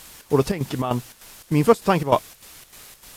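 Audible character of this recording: a quantiser's noise floor 8-bit, dither triangular; chopped level 3.3 Hz, depth 65%, duty 70%; AAC

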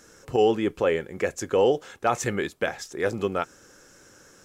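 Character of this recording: noise floor -54 dBFS; spectral tilt -4.5 dB/octave

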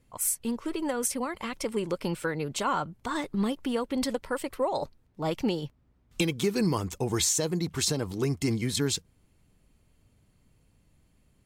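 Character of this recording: noise floor -66 dBFS; spectral tilt -4.0 dB/octave

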